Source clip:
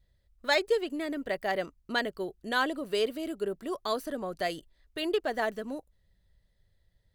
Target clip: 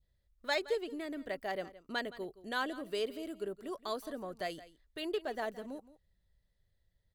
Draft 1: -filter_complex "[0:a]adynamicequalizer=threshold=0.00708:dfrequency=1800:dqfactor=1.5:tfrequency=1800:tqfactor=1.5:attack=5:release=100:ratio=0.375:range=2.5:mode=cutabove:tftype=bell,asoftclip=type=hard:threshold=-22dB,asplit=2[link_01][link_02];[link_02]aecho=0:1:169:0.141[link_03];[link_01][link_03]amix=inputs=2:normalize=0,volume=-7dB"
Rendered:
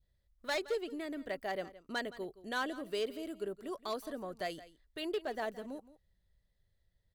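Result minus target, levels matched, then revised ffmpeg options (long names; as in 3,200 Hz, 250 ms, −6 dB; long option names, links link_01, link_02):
hard clipping: distortion +35 dB
-filter_complex "[0:a]adynamicequalizer=threshold=0.00708:dfrequency=1800:dqfactor=1.5:tfrequency=1800:tqfactor=1.5:attack=5:release=100:ratio=0.375:range=2.5:mode=cutabove:tftype=bell,asoftclip=type=hard:threshold=-14dB,asplit=2[link_01][link_02];[link_02]aecho=0:1:169:0.141[link_03];[link_01][link_03]amix=inputs=2:normalize=0,volume=-7dB"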